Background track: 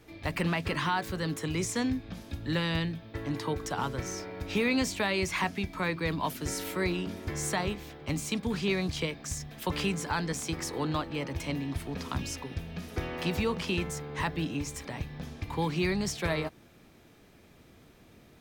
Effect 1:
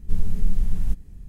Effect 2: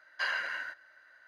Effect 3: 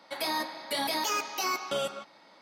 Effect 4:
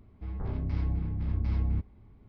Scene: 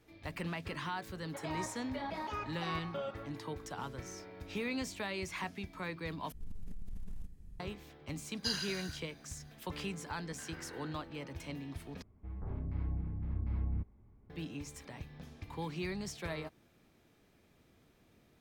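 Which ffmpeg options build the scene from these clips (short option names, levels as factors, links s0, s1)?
-filter_complex "[2:a]asplit=2[s0][s1];[0:a]volume=0.316[s2];[3:a]lowpass=1900[s3];[1:a]acompressor=threshold=0.0501:ratio=16:attack=3:release=32:knee=1:detection=peak[s4];[s0]aexciter=amount=12.6:drive=7.1:freq=3500[s5];[s1]acompressor=threshold=0.0126:ratio=6:attack=3.2:release=140:knee=1:detection=peak[s6];[4:a]lowpass=2100[s7];[s2]asplit=3[s8][s9][s10];[s8]atrim=end=6.324[s11];[s4]atrim=end=1.28,asetpts=PTS-STARTPTS,volume=0.282[s12];[s9]atrim=start=7.596:end=12.024[s13];[s7]atrim=end=2.28,asetpts=PTS-STARTPTS,volume=0.447[s14];[s10]atrim=start=14.296[s15];[s3]atrim=end=2.41,asetpts=PTS-STARTPTS,volume=0.398,afade=t=in:d=0.004:c=hsin,afade=t=out:st=2.406:d=0.004:c=hsin,adelay=1230[s16];[s5]atrim=end=1.27,asetpts=PTS-STARTPTS,volume=0.211,afade=t=in:d=0.004:c=hsin,afade=t=out:st=1.266:d=0.004:c=hsin,adelay=8250[s17];[s6]atrim=end=1.27,asetpts=PTS-STARTPTS,volume=0.237,afade=t=in:d=0.004:c=hsin,afade=t=out:st=1.266:d=0.004:c=hsin,adelay=10190[s18];[s11][s12]acrossfade=d=0.004:c1=hsin:c2=hsin[s19];[s19][s13]acrossfade=d=0.004:c1=hsin:c2=hsin[s20];[s20][s14]acrossfade=d=0.004:c1=hsin:c2=hsin[s21];[s21][s15]acrossfade=d=0.004:c1=hsin:c2=hsin[s22];[s22][s16][s17][s18]amix=inputs=4:normalize=0"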